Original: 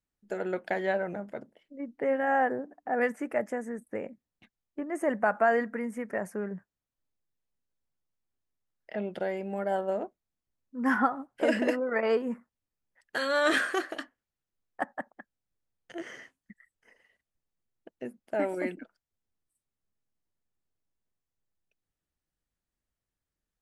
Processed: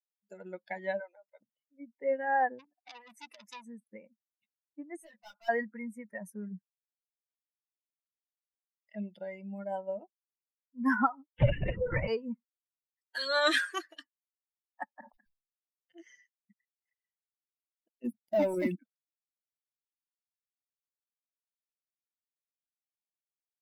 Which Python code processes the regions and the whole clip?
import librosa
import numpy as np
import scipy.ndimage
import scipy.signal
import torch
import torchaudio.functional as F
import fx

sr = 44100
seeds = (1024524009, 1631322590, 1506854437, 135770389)

y = fx.chain(x, sr, fx.highpass(hz=450.0, slope=24),
    fx.notch(hz=670.0, q=12.0), at=(1.0, 1.41))
y = fx.chain(y, sr, fx.over_compress(threshold_db=-30.0, ratio=-0.5),
    fx.transformer_sat(knee_hz=3800.0), at=(2.59, 3.65))
y = fx.chain(y, sr, fx.low_shelf(hz=440.0, db=-11.5),
    fx.clip_hard(threshold_db=-32.0),
    fx.detune_double(cents=26), at=(4.96, 5.49))
y = fx.chain(y, sr, fx.lpc_vocoder(seeds[0], excitation='whisper', order=10),
    fx.band_squash(depth_pct=100), at=(11.34, 12.08))
y = fx.chain(y, sr, fx.moving_average(points=6),
    fx.sustainer(db_per_s=92.0), at=(14.94, 15.98))
y = fx.chain(y, sr, fx.leveller(passes=3),
    fx.peak_eq(hz=2800.0, db=-5.5, octaves=3.0), at=(18.04, 18.77))
y = fx.bin_expand(y, sr, power=2.0)
y = fx.graphic_eq_31(y, sr, hz=(125, 400, 4000), db=(9, -11, 9))
y = y * librosa.db_to_amplitude(1.5)